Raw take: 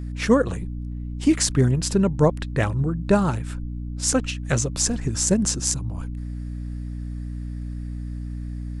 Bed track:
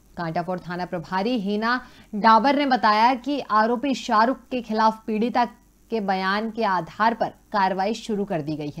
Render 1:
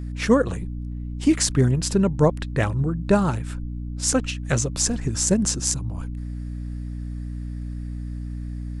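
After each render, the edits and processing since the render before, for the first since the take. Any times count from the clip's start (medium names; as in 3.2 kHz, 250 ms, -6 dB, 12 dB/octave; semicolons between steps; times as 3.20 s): no audible change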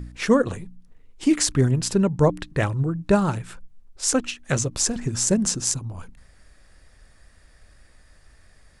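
de-hum 60 Hz, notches 5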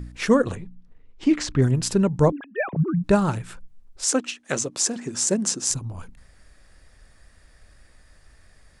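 0.55–1.62 s: distance through air 130 m; 2.32–3.04 s: formants replaced by sine waves; 4.04–5.70 s: Chebyshev band-pass 270–9200 Hz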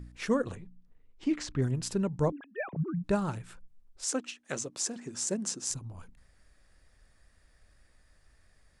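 trim -10 dB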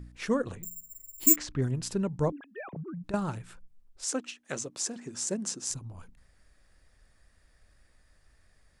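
0.63–1.36 s: careless resampling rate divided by 6×, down none, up zero stuff; 2.38–3.14 s: compression, threshold -36 dBFS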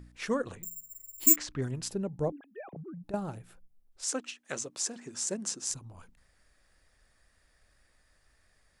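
1.90–3.92 s: time-frequency box 850–9600 Hz -8 dB; bass shelf 310 Hz -6.5 dB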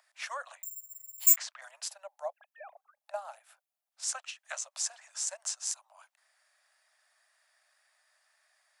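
steep high-pass 600 Hz 96 dB/octave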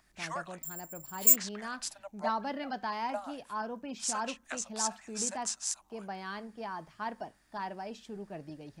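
add bed track -17.5 dB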